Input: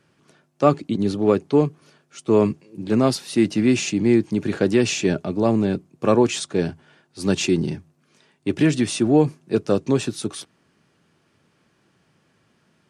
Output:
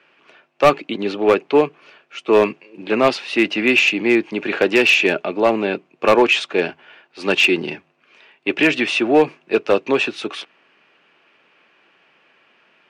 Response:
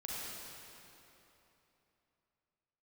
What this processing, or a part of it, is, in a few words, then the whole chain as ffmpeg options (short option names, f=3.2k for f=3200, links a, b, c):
megaphone: -af "highpass=490,lowpass=2.9k,equalizer=f=2.6k:t=o:w=0.58:g=10.5,asoftclip=type=hard:threshold=-14.5dB,volume=8.5dB"